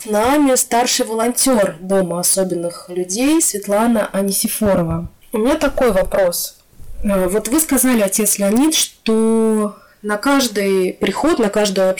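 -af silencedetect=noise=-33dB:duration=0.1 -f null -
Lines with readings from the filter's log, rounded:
silence_start: 5.07
silence_end: 5.23 | silence_duration: 0.16
silence_start: 6.51
silence_end: 6.80 | silence_duration: 0.29
silence_start: 8.90
silence_end: 9.06 | silence_duration: 0.16
silence_start: 9.78
silence_end: 10.04 | silence_duration: 0.25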